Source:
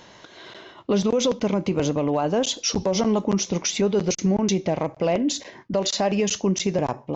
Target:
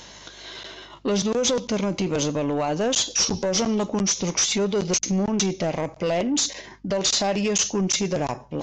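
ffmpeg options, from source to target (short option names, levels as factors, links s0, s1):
-af "crystalizer=i=3.5:c=0,atempo=0.83,aresample=16000,asoftclip=type=tanh:threshold=0.141,aresample=44100,aeval=exprs='val(0)+0.00178*(sin(2*PI*50*n/s)+sin(2*PI*2*50*n/s)/2+sin(2*PI*3*50*n/s)/3+sin(2*PI*4*50*n/s)/4+sin(2*PI*5*50*n/s)/5)':c=same"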